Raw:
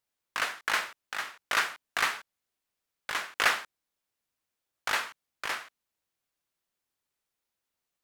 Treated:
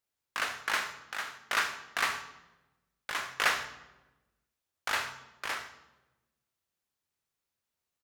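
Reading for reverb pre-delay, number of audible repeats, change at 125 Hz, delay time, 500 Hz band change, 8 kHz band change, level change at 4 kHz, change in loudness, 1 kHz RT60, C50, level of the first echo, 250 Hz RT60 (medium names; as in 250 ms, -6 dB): 3 ms, 1, no reading, 76 ms, -2.0 dB, -1.5 dB, -2.0 dB, -2.0 dB, 1.0 s, 10.5 dB, -16.0 dB, 1.5 s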